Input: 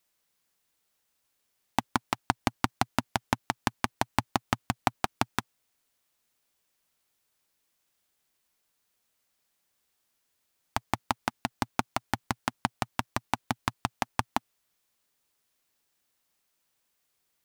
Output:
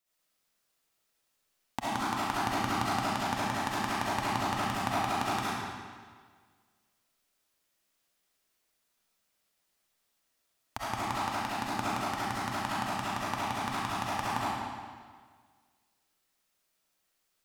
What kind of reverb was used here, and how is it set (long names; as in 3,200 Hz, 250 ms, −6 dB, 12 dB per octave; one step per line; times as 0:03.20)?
comb and all-pass reverb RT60 1.7 s, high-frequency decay 0.9×, pre-delay 25 ms, DRR −9.5 dB
level −9.5 dB